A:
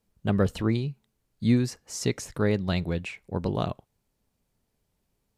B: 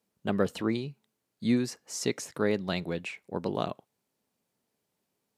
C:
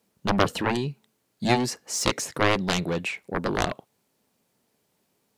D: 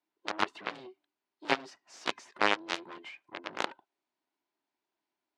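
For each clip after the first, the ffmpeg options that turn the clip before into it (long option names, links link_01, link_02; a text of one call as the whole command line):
ffmpeg -i in.wav -af "highpass=210,volume=-1dB" out.wav
ffmpeg -i in.wav -af "aeval=exprs='0.282*(cos(1*acos(clip(val(0)/0.282,-1,1)))-cos(1*PI/2))+0.112*(cos(7*acos(clip(val(0)/0.282,-1,1)))-cos(7*PI/2))':channel_layout=same,volume=4dB" out.wav
ffmpeg -i in.wav -af "afftfilt=real='real(if(between(b,1,1008),(2*floor((b-1)/24)+1)*24-b,b),0)':imag='imag(if(between(b,1,1008),(2*floor((b-1)/24)+1)*24-b,b),0)*if(between(b,1,1008),-1,1)':win_size=2048:overlap=0.75,aeval=exprs='0.596*(cos(1*acos(clip(val(0)/0.596,-1,1)))-cos(1*PI/2))+0.266*(cos(2*acos(clip(val(0)/0.596,-1,1)))-cos(2*PI/2))+0.119*(cos(7*acos(clip(val(0)/0.596,-1,1)))-cos(7*PI/2))':channel_layout=same,highpass=360,lowpass=4000,volume=-5dB" out.wav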